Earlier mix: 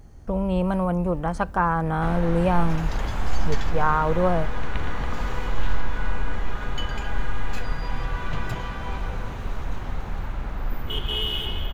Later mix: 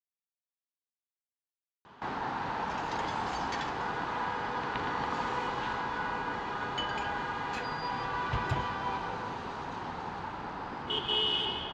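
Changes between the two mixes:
speech: muted; first sound: add cabinet simulation 210–9900 Hz, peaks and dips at 210 Hz -3 dB, 590 Hz -5 dB, 900 Hz +7 dB, 2.2 kHz -4 dB, 4.7 kHz +6 dB; master: add distance through air 80 m

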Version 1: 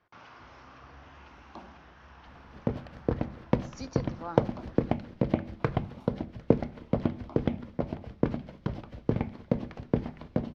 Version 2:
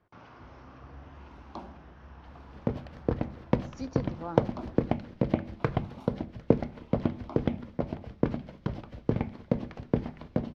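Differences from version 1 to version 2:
speech: add tilt shelf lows +6 dB, about 780 Hz; first sound +4.5 dB

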